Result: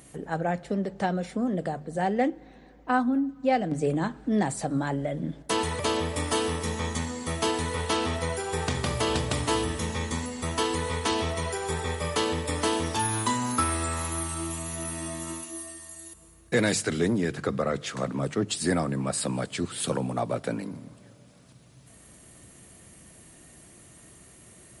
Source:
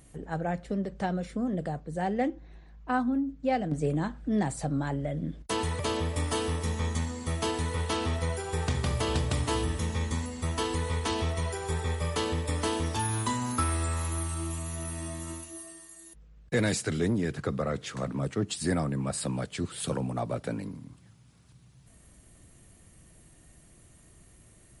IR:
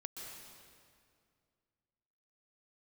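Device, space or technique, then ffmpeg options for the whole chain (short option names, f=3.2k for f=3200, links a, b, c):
ducked reverb: -filter_complex "[0:a]highpass=f=170:p=1,bandreject=f=50:t=h:w=6,bandreject=f=100:t=h:w=6,bandreject=f=150:t=h:w=6,asplit=3[a][b][c];[1:a]atrim=start_sample=2205[d];[b][d]afir=irnorm=-1:irlink=0[e];[c]apad=whole_len=1093701[f];[e][f]sidechaincompress=threshold=-48dB:ratio=8:attack=50:release=1280,volume=-1dB[g];[a][g]amix=inputs=2:normalize=0,volume=4dB"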